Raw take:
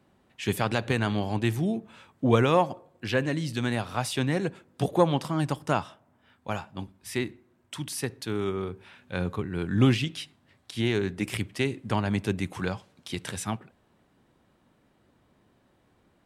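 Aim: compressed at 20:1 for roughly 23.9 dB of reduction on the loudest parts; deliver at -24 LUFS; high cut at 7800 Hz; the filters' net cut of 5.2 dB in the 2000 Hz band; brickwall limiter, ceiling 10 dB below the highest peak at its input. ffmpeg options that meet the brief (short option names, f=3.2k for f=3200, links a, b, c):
-af "lowpass=7.8k,equalizer=f=2k:t=o:g=-7,acompressor=threshold=-39dB:ratio=20,volume=23dB,alimiter=limit=-12dB:level=0:latency=1"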